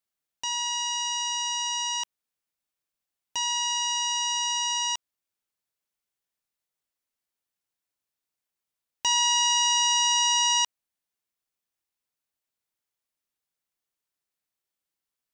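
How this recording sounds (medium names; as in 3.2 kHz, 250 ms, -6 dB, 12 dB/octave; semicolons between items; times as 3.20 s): noise floor -88 dBFS; spectral tilt -1.0 dB/octave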